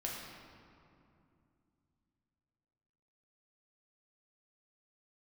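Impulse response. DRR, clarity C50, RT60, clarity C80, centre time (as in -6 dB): -3.5 dB, 0.5 dB, 2.6 s, 2.0 dB, 100 ms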